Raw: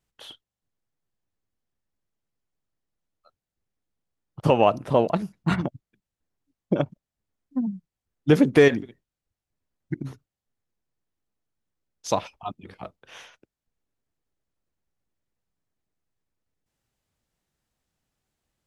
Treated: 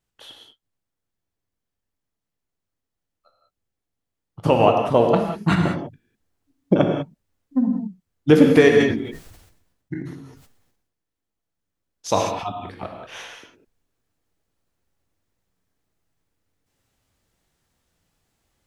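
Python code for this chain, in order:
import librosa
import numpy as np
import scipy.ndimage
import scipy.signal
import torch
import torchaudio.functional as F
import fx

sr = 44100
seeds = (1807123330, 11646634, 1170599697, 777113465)

y = fx.rider(x, sr, range_db=4, speed_s=2.0)
y = fx.rev_gated(y, sr, seeds[0], gate_ms=220, shape='flat', drr_db=2.0)
y = fx.sustainer(y, sr, db_per_s=59.0, at=(8.78, 12.46))
y = y * librosa.db_to_amplitude(3.0)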